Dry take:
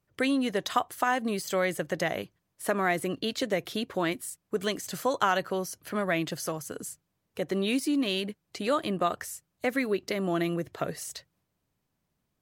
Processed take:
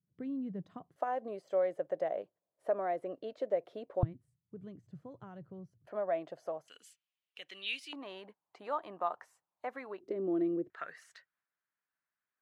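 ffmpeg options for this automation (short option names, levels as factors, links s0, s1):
-af "asetnsamples=n=441:p=0,asendcmd='0.96 bandpass f 590;4.03 bandpass f 120;5.87 bandpass f 650;6.68 bandpass f 2900;7.93 bandpass f 900;10 bandpass f 360;10.7 bandpass f 1600',bandpass=f=170:t=q:w=3.5:csg=0"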